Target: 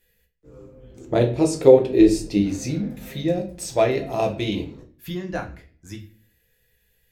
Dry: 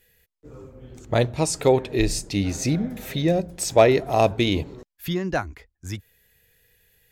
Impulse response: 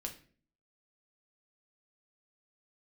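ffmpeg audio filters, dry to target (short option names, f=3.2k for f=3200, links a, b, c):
-filter_complex "[0:a]asettb=1/sr,asplit=3[a][b][c];[a]atrim=end=0.984[d];[b]atrim=start=0.98:end=2.41,asetpts=PTS-STARTPTS,afade=t=in:d=0.004:c=qsin,afade=t=out:st=1.426:d=0.004:c=qsin,equalizer=f=360:t=o:w=1.6:g=11[e];[c]atrim=start=2.406[f];[d][e]acrossfade=d=0.004:c1=hsin:c2=qsin[g];[g][f]acrossfade=d=0.004:c1=qsin:c2=hsin[h];[1:a]atrim=start_sample=2205[i];[h][i]afir=irnorm=-1:irlink=0,volume=-3dB"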